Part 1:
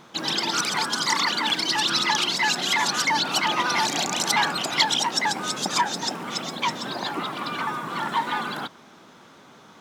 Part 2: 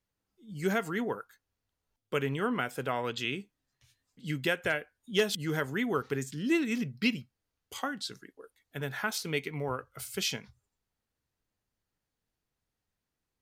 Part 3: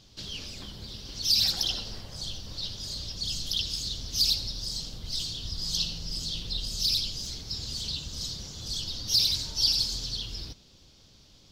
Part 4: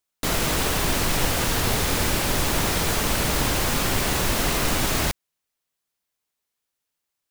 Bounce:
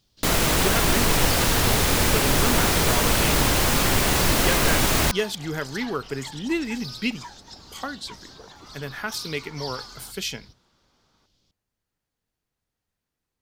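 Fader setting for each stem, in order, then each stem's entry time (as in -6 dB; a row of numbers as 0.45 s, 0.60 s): -19.0 dB, +2.0 dB, -12.5 dB, +2.5 dB; 1.45 s, 0.00 s, 0.00 s, 0.00 s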